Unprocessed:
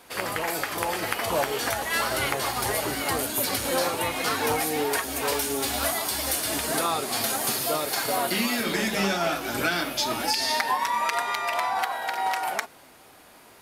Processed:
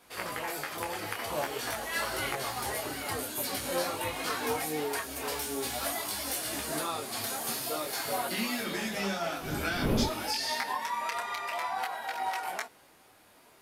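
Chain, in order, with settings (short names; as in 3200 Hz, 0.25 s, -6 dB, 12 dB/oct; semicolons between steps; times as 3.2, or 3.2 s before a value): 9.41–10.09 wind noise 290 Hz -22 dBFS; detuned doubles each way 17 cents; gain -3.5 dB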